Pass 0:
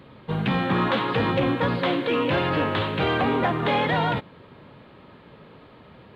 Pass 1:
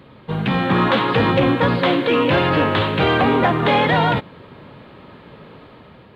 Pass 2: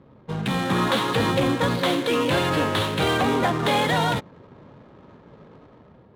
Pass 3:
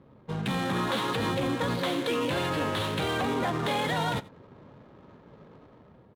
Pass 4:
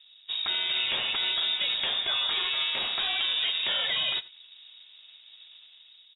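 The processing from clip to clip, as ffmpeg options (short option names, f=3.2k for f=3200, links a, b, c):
-af "dynaudnorm=f=240:g=5:m=4dB,volume=2.5dB"
-af "aexciter=amount=1.7:drive=8.9:freq=3.7k,adynamicsmooth=sensitivity=7:basefreq=730,volume=-5.5dB"
-af "alimiter=limit=-16.5dB:level=0:latency=1,aecho=1:1:87:0.0891,volume=-4dB"
-af "lowpass=f=3.3k:t=q:w=0.5098,lowpass=f=3.3k:t=q:w=0.6013,lowpass=f=3.3k:t=q:w=0.9,lowpass=f=3.3k:t=q:w=2.563,afreqshift=-3900"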